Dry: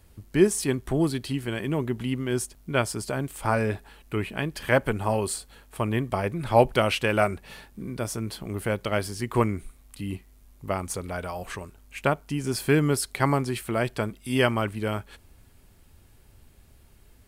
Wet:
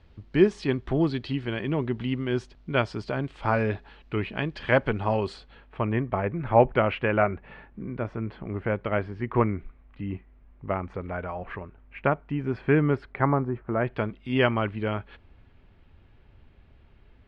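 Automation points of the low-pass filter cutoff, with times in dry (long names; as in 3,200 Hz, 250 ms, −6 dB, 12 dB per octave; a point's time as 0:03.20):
low-pass filter 24 dB per octave
0:05.30 4,100 Hz
0:06.01 2,300 Hz
0:13.02 2,300 Hz
0:13.63 1,200 Hz
0:14.01 3,200 Hz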